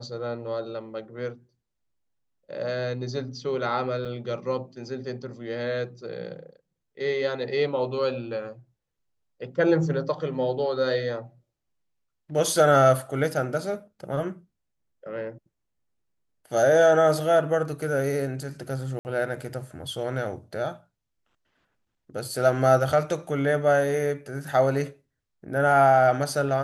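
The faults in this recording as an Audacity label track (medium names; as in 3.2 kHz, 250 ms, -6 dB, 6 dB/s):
4.050000	4.060000	dropout 5.3 ms
18.990000	19.050000	dropout 59 ms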